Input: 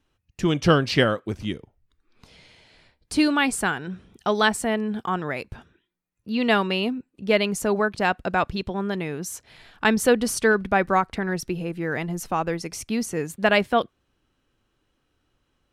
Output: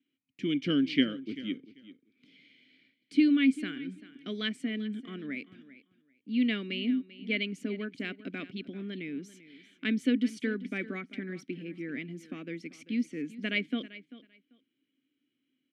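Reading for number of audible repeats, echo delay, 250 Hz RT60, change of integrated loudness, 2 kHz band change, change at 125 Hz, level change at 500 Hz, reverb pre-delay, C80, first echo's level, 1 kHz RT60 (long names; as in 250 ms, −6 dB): 2, 391 ms, no reverb audible, −8.5 dB, −11.5 dB, −13.5 dB, −16.5 dB, no reverb audible, no reverb audible, −17.0 dB, no reverb audible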